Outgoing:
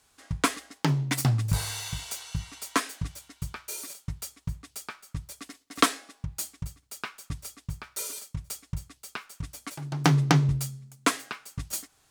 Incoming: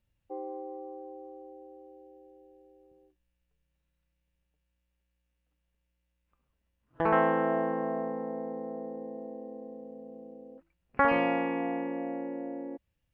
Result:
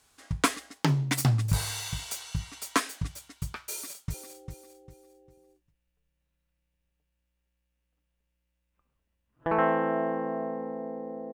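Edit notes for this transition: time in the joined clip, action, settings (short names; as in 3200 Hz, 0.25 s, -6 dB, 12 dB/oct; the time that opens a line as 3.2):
outgoing
3.7–4.14 echo throw 0.4 s, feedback 30%, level -7.5 dB
4.14 switch to incoming from 1.68 s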